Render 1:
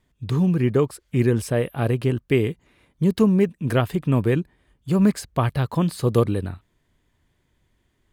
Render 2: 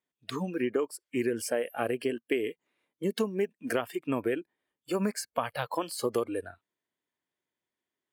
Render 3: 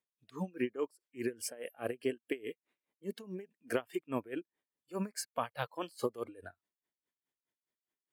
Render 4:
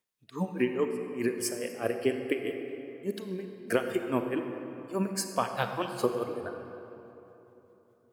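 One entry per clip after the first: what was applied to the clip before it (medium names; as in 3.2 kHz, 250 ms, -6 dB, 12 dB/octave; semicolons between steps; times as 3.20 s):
spectral noise reduction 17 dB; high-pass 320 Hz 12 dB/octave; compression 6:1, threshold -25 dBFS, peak gain reduction 9.5 dB
logarithmic tremolo 4.8 Hz, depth 22 dB; trim -2 dB
reverberation RT60 3.4 s, pre-delay 31 ms, DRR 5.5 dB; trim +6.5 dB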